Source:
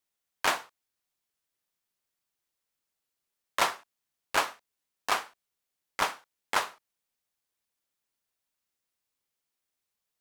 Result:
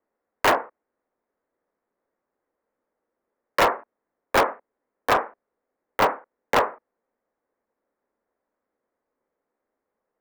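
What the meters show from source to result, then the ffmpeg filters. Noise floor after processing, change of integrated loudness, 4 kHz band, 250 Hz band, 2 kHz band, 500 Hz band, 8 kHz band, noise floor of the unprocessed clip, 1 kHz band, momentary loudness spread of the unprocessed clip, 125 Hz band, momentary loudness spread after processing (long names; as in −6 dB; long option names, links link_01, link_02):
−84 dBFS, +7.5 dB, +2.0 dB, +13.5 dB, +5.5 dB, +14.0 dB, −1.0 dB, below −85 dBFS, +8.5 dB, 14 LU, +14.0 dB, 13 LU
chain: -filter_complex "[0:a]acrossover=split=520|1500[link_01][link_02][link_03];[link_03]acrusher=bits=3:mix=0:aa=0.000001[link_04];[link_01][link_02][link_04]amix=inputs=3:normalize=0,equalizer=frequency=125:width_type=o:width=1:gain=-7,equalizer=frequency=250:width_type=o:width=1:gain=9,equalizer=frequency=500:width_type=o:width=1:gain=12,equalizer=frequency=1000:width_type=o:width=1:gain=3,equalizer=frequency=2000:width_type=o:width=1:gain=10,equalizer=frequency=4000:width_type=o:width=1:gain=-4,equalizer=frequency=8000:width_type=o:width=1:gain=-12,asoftclip=type=hard:threshold=-19.5dB,volume=6dB"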